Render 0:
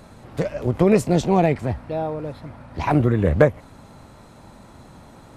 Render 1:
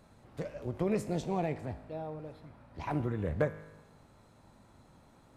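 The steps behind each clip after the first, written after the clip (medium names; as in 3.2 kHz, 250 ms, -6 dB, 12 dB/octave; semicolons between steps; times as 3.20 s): feedback comb 52 Hz, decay 1.1 s, harmonics all, mix 60%; trim -8.5 dB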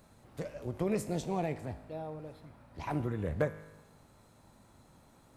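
treble shelf 7.4 kHz +10 dB; trim -1 dB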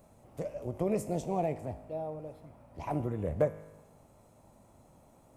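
fifteen-band graphic EQ 630 Hz +6 dB, 1.6 kHz -8 dB, 4 kHz -9 dB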